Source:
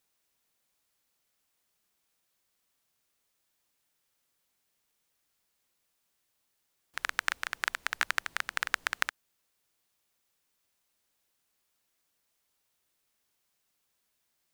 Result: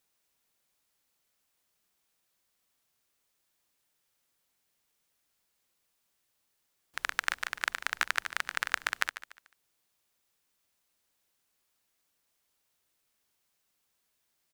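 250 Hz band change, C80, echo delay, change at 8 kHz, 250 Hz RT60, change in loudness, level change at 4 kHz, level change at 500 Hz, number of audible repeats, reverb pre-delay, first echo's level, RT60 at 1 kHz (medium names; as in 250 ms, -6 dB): 0.0 dB, no reverb, 146 ms, 0.0 dB, no reverb, 0.0 dB, 0.0 dB, 0.0 dB, 3, no reverb, -14.0 dB, no reverb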